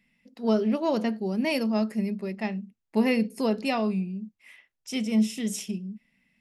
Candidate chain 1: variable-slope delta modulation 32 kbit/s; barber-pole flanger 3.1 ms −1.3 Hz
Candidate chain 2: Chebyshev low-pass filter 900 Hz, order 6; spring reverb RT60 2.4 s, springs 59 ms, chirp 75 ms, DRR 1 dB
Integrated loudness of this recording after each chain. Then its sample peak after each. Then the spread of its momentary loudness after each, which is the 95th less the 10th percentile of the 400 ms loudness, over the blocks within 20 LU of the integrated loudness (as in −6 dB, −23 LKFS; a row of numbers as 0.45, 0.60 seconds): −30.5, −26.0 LKFS; −13.5, −11.0 dBFS; 15, 12 LU